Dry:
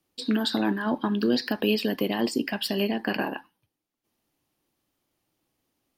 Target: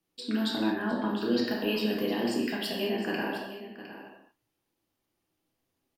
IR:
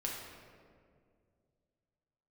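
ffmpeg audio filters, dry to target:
-filter_complex "[0:a]aecho=1:1:709:0.224[s0];[1:a]atrim=start_sample=2205,afade=t=out:st=0.29:d=0.01,atrim=end_sample=13230[s1];[s0][s1]afir=irnorm=-1:irlink=0,volume=0.562"

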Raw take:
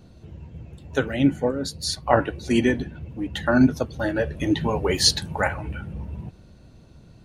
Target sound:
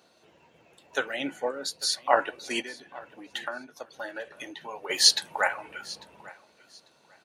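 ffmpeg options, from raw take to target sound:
-filter_complex "[0:a]asplit=3[s0][s1][s2];[s0]afade=t=out:st=2.61:d=0.02[s3];[s1]acompressor=threshold=0.0355:ratio=6,afade=t=in:st=2.61:d=0.02,afade=t=out:st=4.89:d=0.02[s4];[s2]afade=t=in:st=4.89:d=0.02[s5];[s3][s4][s5]amix=inputs=3:normalize=0,highpass=670,aecho=1:1:846|1692:0.0891|0.0196"

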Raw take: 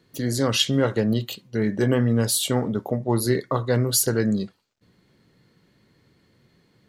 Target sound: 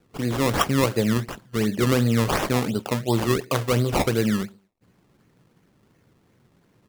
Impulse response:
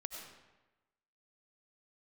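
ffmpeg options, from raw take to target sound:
-filter_complex "[0:a]asplit=2[s0][s1];[s1]adelay=112,lowpass=f=3200:p=1,volume=0.0631,asplit=2[s2][s3];[s3]adelay=112,lowpass=f=3200:p=1,volume=0.24[s4];[s0][s2][s4]amix=inputs=3:normalize=0,acrusher=samples=20:mix=1:aa=0.000001:lfo=1:lforange=20:lforate=2.8"

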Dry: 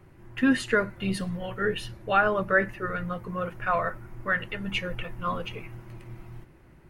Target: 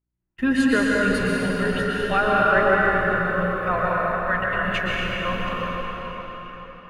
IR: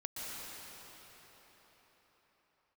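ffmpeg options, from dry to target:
-filter_complex "[0:a]aeval=exprs='val(0)+0.00708*(sin(2*PI*60*n/s)+sin(2*PI*2*60*n/s)/2+sin(2*PI*3*60*n/s)/3+sin(2*PI*4*60*n/s)/4+sin(2*PI*5*60*n/s)/5)':c=same,agate=range=0.0112:threshold=0.0224:ratio=16:detection=peak[s0];[1:a]atrim=start_sample=2205[s1];[s0][s1]afir=irnorm=-1:irlink=0,volume=1.78"

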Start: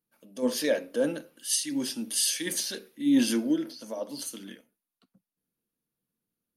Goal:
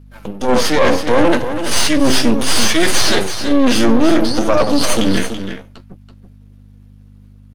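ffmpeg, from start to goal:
-filter_complex "[0:a]flanger=delay=6.9:depth=9:regen=37:speed=0.77:shape=triangular,areverse,acompressor=threshold=0.0141:ratio=8,areverse,aeval=exprs='max(val(0),0)':c=same,aemphasis=mode=reproduction:type=50fm,atempo=0.87,aeval=exprs='val(0)+0.000178*(sin(2*PI*50*n/s)+sin(2*PI*2*50*n/s)/2+sin(2*PI*3*50*n/s)/3+sin(2*PI*4*50*n/s)/4+sin(2*PI*5*50*n/s)/5)':c=same,acontrast=37,apsyclip=50.1,asplit=2[s0][s1];[s1]aecho=0:1:331:0.355[s2];[s0][s2]amix=inputs=2:normalize=0,volume=0.631"

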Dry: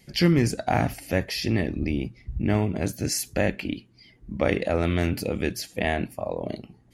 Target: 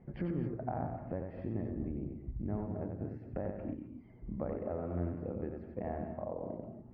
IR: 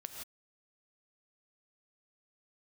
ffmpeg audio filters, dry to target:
-filter_complex "[0:a]lowpass=f=1200:w=0.5412,lowpass=f=1200:w=1.3066,acompressor=threshold=0.00708:ratio=3,asplit=2[s0][s1];[1:a]atrim=start_sample=2205,adelay=91[s2];[s1][s2]afir=irnorm=-1:irlink=0,volume=0.944[s3];[s0][s3]amix=inputs=2:normalize=0,volume=1.19"

